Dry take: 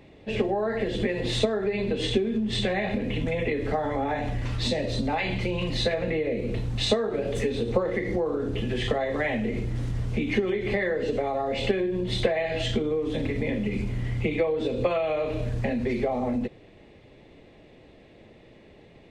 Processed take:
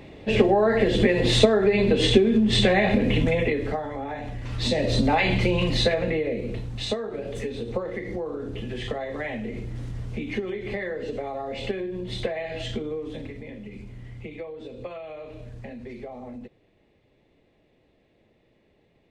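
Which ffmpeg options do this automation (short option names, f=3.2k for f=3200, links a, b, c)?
-af "volume=18dB,afade=t=out:st=3.13:d=0.74:silence=0.251189,afade=t=in:st=4.44:d=0.51:silence=0.281838,afade=t=out:st=5.45:d=1.24:silence=0.298538,afade=t=out:st=12.94:d=0.48:silence=0.421697"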